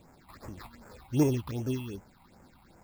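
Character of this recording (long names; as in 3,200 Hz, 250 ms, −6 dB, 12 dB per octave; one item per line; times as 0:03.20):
aliases and images of a low sample rate 3,000 Hz, jitter 0%
phaser sweep stages 6, 2.6 Hz, lowest notch 420–4,000 Hz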